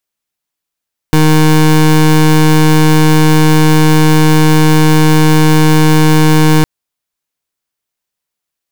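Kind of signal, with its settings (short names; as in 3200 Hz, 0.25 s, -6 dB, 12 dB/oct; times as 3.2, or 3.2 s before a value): pulse 155 Hz, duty 24% -6.5 dBFS 5.51 s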